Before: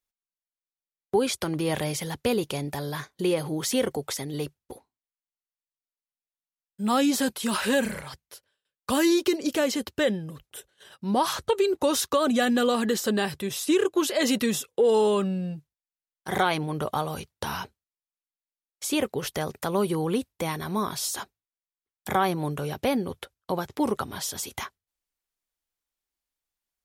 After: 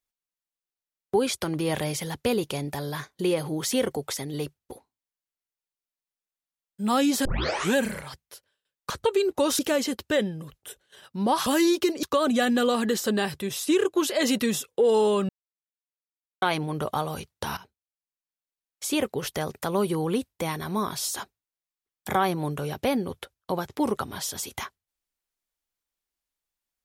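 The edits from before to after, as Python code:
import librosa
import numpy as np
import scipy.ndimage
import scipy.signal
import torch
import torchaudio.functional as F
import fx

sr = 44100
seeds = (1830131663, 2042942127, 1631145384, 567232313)

y = fx.edit(x, sr, fx.tape_start(start_s=7.25, length_s=0.51),
    fx.swap(start_s=8.9, length_s=0.57, other_s=11.34, other_length_s=0.69),
    fx.silence(start_s=15.29, length_s=1.13),
    fx.fade_in_from(start_s=17.57, length_s=1.27, floor_db=-15.5), tone=tone)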